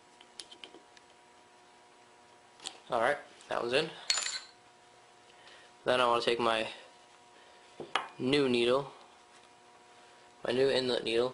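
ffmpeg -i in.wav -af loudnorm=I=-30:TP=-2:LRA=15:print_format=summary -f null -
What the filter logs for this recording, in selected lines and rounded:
Input Integrated:    -30.9 LUFS
Input True Peak:      -9.7 dBTP
Input LRA:             3.9 LU
Input Threshold:     -44.0 LUFS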